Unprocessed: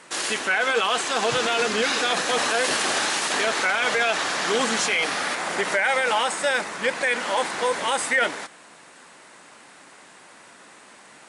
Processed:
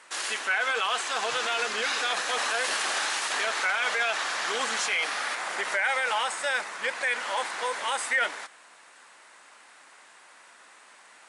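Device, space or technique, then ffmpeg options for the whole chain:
filter by subtraction: -filter_complex "[0:a]asplit=2[s0][s1];[s1]lowpass=1200,volume=-1[s2];[s0][s2]amix=inputs=2:normalize=0,volume=0.531"

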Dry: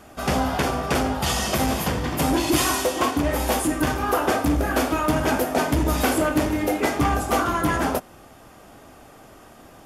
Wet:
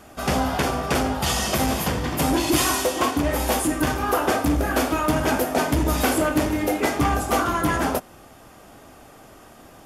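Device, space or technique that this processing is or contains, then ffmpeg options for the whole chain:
exciter from parts: -filter_complex "[0:a]asplit=2[s0][s1];[s1]highpass=f=4500:p=1,asoftclip=type=tanh:threshold=0.0708,volume=0.237[s2];[s0][s2]amix=inputs=2:normalize=0"

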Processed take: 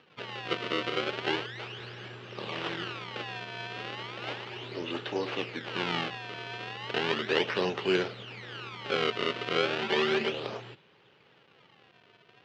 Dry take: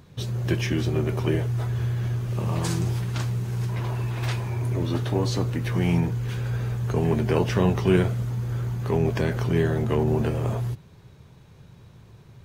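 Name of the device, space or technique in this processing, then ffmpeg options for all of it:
circuit-bent sampling toy: -filter_complex "[0:a]acrusher=samples=30:mix=1:aa=0.000001:lfo=1:lforange=48:lforate=0.35,highpass=460,equalizer=f=670:t=q:w=4:g=-6,equalizer=f=1000:t=q:w=4:g=-5,equalizer=f=2900:t=q:w=4:g=7,lowpass=f=4200:w=0.5412,lowpass=f=4200:w=1.3066,asettb=1/sr,asplit=3[s0][s1][s2];[s0]atrim=end=9.814[s3];[s1]atrim=start=9.81:end=10.32,asetpts=PTS-STARTPTS,afade=t=in:d=0.004:c=qsin,afade=t=out:st=0.506:d=0.004:c=qsin,aecho=1:1:5.1:0.66,atrim=end_sample=22491[s4];[s2]atrim=start=10.316[s5];[s3][s4]acrossfade=d=0.004:c1=hsin:c2=qsin[s6];[s6][s5]acrossfade=d=0.004:c1=qsin:c2=hsin"

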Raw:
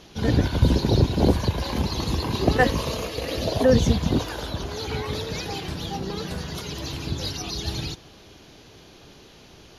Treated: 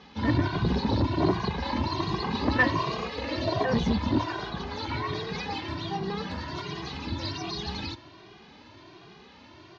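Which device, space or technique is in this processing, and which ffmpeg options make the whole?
barber-pole flanger into a guitar amplifier: -filter_complex "[0:a]asplit=2[s0][s1];[s1]adelay=2,afreqshift=1.3[s2];[s0][s2]amix=inputs=2:normalize=1,asoftclip=type=tanh:threshold=0.141,highpass=88,equalizer=f=140:t=q:w=4:g=-3,equalizer=f=340:t=q:w=4:g=3,equalizer=f=490:t=q:w=4:g=-7,equalizer=f=1000:t=q:w=4:g=8,equalizer=f=1900:t=q:w=4:g=4,equalizer=f=3200:t=q:w=4:g=-3,lowpass=f=4600:w=0.5412,lowpass=f=4600:w=1.3066,volume=1.19"

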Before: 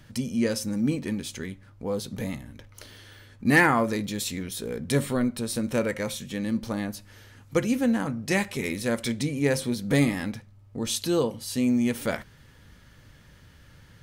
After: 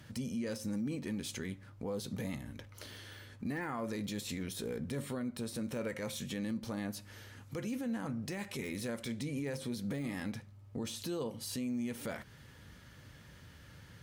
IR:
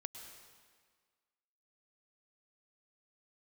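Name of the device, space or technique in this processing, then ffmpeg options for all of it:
podcast mastering chain: -af "highpass=61,deesser=0.7,acompressor=threshold=0.0224:ratio=3,alimiter=level_in=1.68:limit=0.0631:level=0:latency=1:release=11,volume=0.596,volume=0.891" -ar 44100 -c:a libmp3lame -b:a 112k

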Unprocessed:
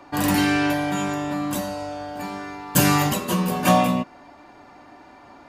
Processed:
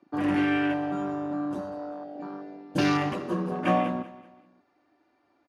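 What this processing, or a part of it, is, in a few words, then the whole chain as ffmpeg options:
car door speaker: -filter_complex "[0:a]highpass=100,equalizer=f=130:t=q:w=4:g=-7,equalizer=f=210:t=q:w=4:g=-6,equalizer=f=330:t=q:w=4:g=7,equalizer=f=930:t=q:w=4:g=-6,equalizer=f=7600:t=q:w=4:g=-10,lowpass=f=9200:w=0.5412,lowpass=f=9200:w=1.3066,afwtdn=0.0398,asettb=1/sr,asplit=3[s0][s1][s2];[s0]atrim=end=1.704[s3];[s1]atrim=start=1.7:end=2.73,asetpts=PTS-STARTPTS,afade=t=in:d=0.004:c=qsin,afade=t=out:st=1.026:d=0.004:c=qsin,lowpass=f=5700:w=0.5412,lowpass=f=5700:w=1.3066[s4];[s2]atrim=start=2.726[s5];[s3][s4]acrossfade=d=0.004:c1=hsin:c2=qsin[s6];[s6][s5]acrossfade=d=0.004:c1=qsin:c2=hsin,aecho=1:1:192|384|576:0.158|0.0602|0.0229,volume=0.562"

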